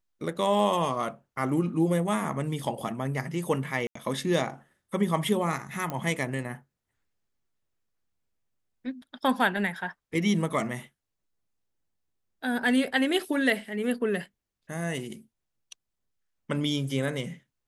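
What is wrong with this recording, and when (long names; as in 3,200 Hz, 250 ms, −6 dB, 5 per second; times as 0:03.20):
0:03.87–0:03.95: drop-out 84 ms
0:05.90: click −18 dBFS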